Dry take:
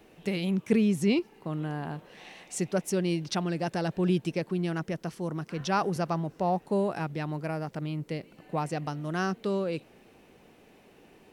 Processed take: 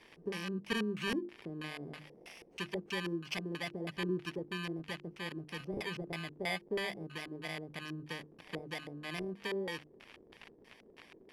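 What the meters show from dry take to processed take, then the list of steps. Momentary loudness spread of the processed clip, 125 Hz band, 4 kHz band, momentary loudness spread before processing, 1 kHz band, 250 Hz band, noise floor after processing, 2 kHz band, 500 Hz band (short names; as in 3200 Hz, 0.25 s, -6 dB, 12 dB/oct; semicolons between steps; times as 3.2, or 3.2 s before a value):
20 LU, -13.0 dB, -1.0 dB, 10 LU, -13.5 dB, -11.5 dB, -62 dBFS, -1.5 dB, -9.5 dB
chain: FFT order left unsorted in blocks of 32 samples; low shelf 370 Hz -4.5 dB; notches 50/100/150/200/250/300/350 Hz; in parallel at +3 dB: compressor, threshold -41 dBFS, peak gain reduction 19 dB; on the sum: pre-emphasis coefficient 0.8; crackle 58/s -38 dBFS; hard clip -16 dBFS, distortion -20 dB; LFO low-pass square 3.1 Hz 410–2600 Hz; gain +2.5 dB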